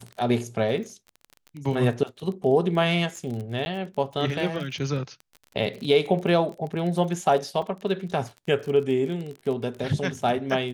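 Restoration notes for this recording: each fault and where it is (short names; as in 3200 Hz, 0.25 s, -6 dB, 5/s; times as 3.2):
crackle 25/s -32 dBFS
3.65–3.66 gap
7.62 gap 3.5 ms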